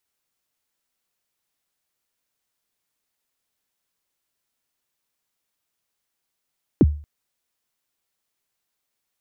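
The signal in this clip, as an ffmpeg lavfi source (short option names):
-f lavfi -i "aevalsrc='0.447*pow(10,-3*t/0.4)*sin(2*PI*(400*0.037/log(74/400)*(exp(log(74/400)*min(t,0.037)/0.037)-1)+74*max(t-0.037,0)))':d=0.23:s=44100"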